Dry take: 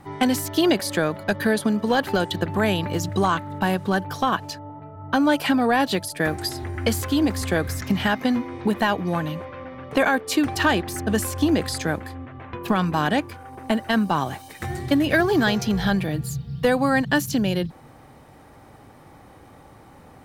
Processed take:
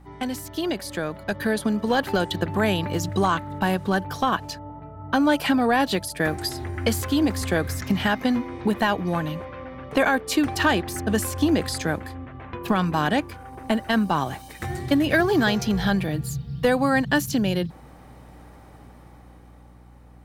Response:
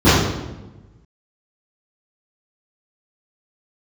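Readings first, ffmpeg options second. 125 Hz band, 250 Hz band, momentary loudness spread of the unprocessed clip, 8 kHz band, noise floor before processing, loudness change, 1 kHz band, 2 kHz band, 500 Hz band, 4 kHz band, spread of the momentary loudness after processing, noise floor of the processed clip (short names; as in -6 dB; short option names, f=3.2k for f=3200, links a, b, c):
-0.5 dB, -1.0 dB, 11 LU, -1.5 dB, -48 dBFS, -1.0 dB, -1.0 dB, -1.0 dB, -1.0 dB, -1.0 dB, 11 LU, -47 dBFS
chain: -af "dynaudnorm=f=130:g=21:m=11dB,aeval=exprs='val(0)+0.0112*(sin(2*PI*60*n/s)+sin(2*PI*2*60*n/s)/2+sin(2*PI*3*60*n/s)/3+sin(2*PI*4*60*n/s)/4+sin(2*PI*5*60*n/s)/5)':c=same,volume=-8.5dB"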